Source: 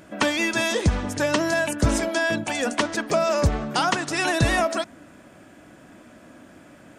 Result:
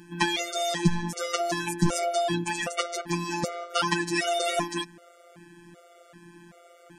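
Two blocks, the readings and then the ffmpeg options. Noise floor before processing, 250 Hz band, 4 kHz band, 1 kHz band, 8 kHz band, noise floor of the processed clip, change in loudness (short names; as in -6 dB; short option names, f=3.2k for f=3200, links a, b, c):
-50 dBFS, -4.0 dB, -2.0 dB, -3.0 dB, -2.5 dB, -55 dBFS, -4.5 dB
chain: -af "afftfilt=real='hypot(re,im)*cos(PI*b)':imag='0':win_size=1024:overlap=0.75,afftfilt=real='re*gt(sin(2*PI*1.3*pts/sr)*(1-2*mod(floor(b*sr/1024/380),2)),0)':imag='im*gt(sin(2*PI*1.3*pts/sr)*(1-2*mod(floor(b*sr/1024/380),2)),0)':win_size=1024:overlap=0.75,volume=4dB"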